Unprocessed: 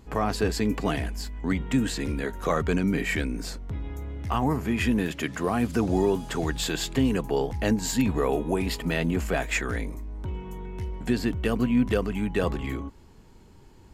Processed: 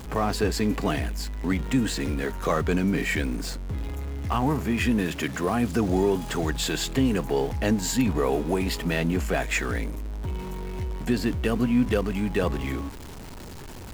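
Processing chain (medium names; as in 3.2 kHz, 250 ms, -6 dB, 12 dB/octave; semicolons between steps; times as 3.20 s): jump at every zero crossing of -35.5 dBFS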